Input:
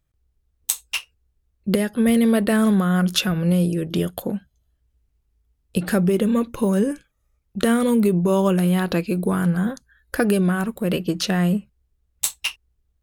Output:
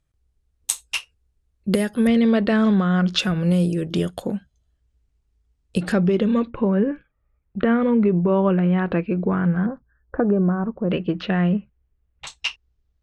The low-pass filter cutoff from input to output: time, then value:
low-pass filter 24 dB per octave
11,000 Hz
from 0:02.07 5,000 Hz
from 0:03.19 8,900 Hz
from 0:05.92 4,700 Hz
from 0:06.50 2,400 Hz
from 0:09.66 1,200 Hz
from 0:10.91 2,900 Hz
from 0:12.27 6,200 Hz

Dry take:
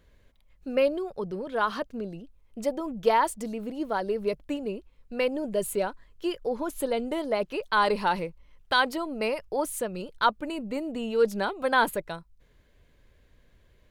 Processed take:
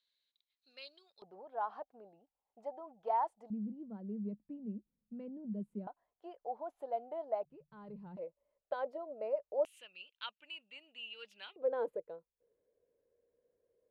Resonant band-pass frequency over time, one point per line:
resonant band-pass, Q 8.4
4,000 Hz
from 0:01.22 780 Hz
from 0:03.50 210 Hz
from 0:05.87 730 Hz
from 0:07.45 150 Hz
from 0:08.17 590 Hz
from 0:09.65 2,800 Hz
from 0:11.56 480 Hz

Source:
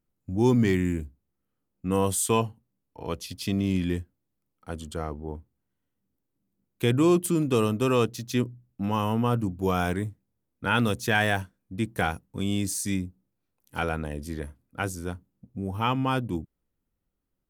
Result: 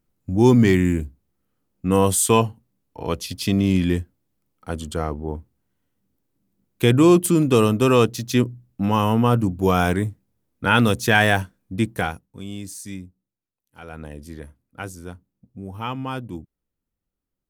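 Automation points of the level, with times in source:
0:11.82 +7 dB
0:12.38 −6 dB
0:13.05 −6 dB
0:13.77 −15 dB
0:14.03 −3 dB

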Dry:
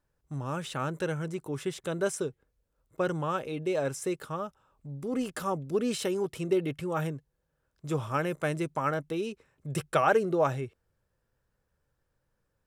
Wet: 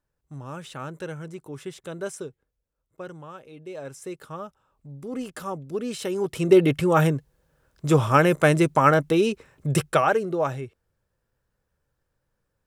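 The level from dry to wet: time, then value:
0:02.20 −3 dB
0:03.41 −11.5 dB
0:04.39 −1 dB
0:05.96 −1 dB
0:06.58 +12 dB
0:09.68 +12 dB
0:10.16 +1 dB

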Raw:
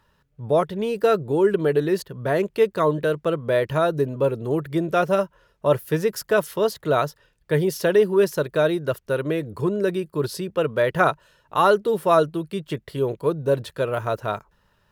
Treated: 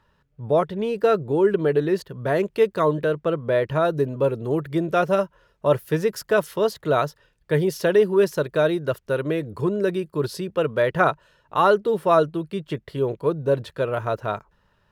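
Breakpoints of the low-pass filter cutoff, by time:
low-pass filter 6 dB per octave
4,000 Hz
from 0:02.03 8,500 Hz
from 0:03.04 3,100 Hz
from 0:03.85 7,600 Hz
from 0:10.87 4,200 Hz

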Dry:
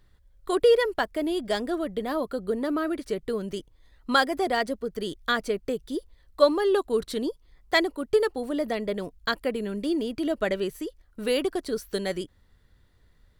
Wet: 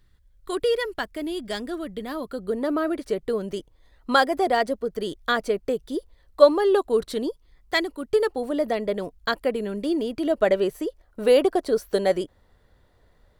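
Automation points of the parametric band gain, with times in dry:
parametric band 650 Hz 1.6 octaves
0:02.19 −5.5 dB
0:02.70 +5.5 dB
0:07.08 +5.5 dB
0:07.88 −4.5 dB
0:08.35 +5 dB
0:10.24 +5 dB
0:10.69 +11.5 dB

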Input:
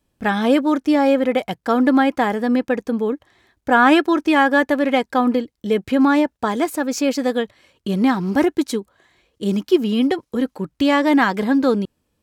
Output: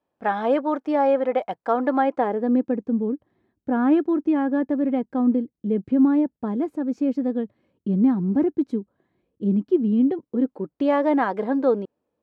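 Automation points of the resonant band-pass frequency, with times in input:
resonant band-pass, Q 1.2
0:01.94 740 Hz
0:02.87 210 Hz
0:10.10 210 Hz
0:10.91 560 Hz

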